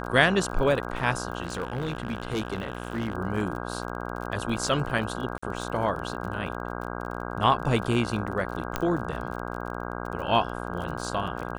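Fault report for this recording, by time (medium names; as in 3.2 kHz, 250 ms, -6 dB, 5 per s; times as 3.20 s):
buzz 60 Hz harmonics 27 -34 dBFS
crackle 39 per s -35 dBFS
1.42–3.15 s: clipped -24.5 dBFS
5.38–5.42 s: dropout 45 ms
8.76 s: pop -11 dBFS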